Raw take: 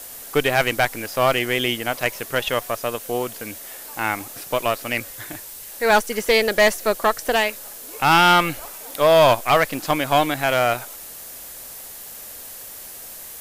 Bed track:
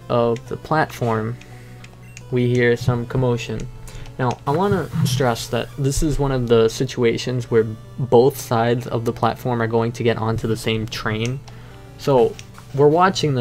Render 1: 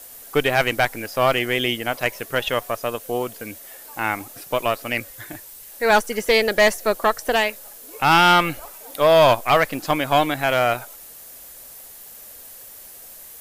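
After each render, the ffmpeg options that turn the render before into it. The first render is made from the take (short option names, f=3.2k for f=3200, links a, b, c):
-af "afftdn=nr=6:nf=-38"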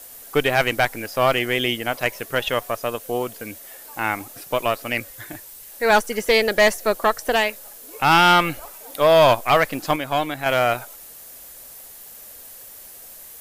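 -filter_complex "[0:a]asplit=3[a][b][c];[a]atrim=end=9.962[d];[b]atrim=start=9.958:end=10.462,asetpts=PTS-STARTPTS,volume=-4.5dB[e];[c]atrim=start=10.458[f];[d][e]acrossfade=d=0.004:c1=hsin:c2=hsin[g];[g][f]acrossfade=d=0.004:c1=hsin:c2=hsin"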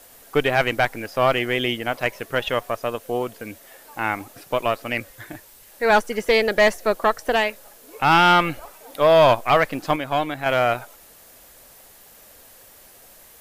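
-af "highshelf=f=5.3k:g=-9.5"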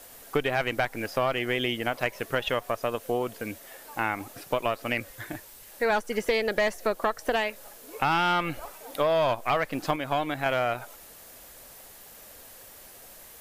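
-af "acompressor=threshold=-23dB:ratio=4"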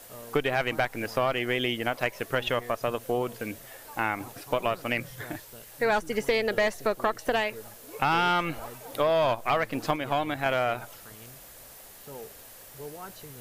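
-filter_complex "[1:a]volume=-28dB[a];[0:a][a]amix=inputs=2:normalize=0"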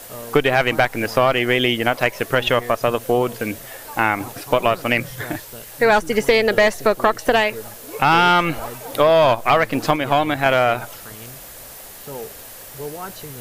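-af "volume=10dB,alimiter=limit=-1dB:level=0:latency=1"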